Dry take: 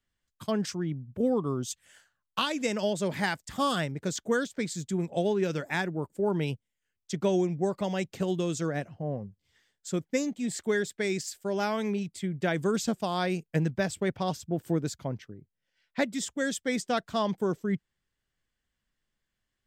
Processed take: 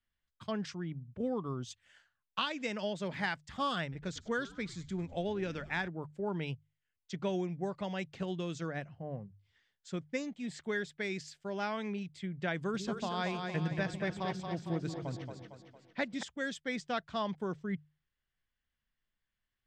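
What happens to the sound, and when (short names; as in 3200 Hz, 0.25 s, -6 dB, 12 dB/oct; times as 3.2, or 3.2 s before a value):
3.82–5.88 frequency-shifting echo 0.101 s, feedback 51%, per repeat -91 Hz, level -19 dB
12.59–16.23 split-band echo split 340 Hz, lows 0.149 s, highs 0.228 s, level -5 dB
whole clip: LPF 3900 Hz 12 dB/oct; bell 360 Hz -6.5 dB 2.3 oct; notches 50/100/150 Hz; gain -3 dB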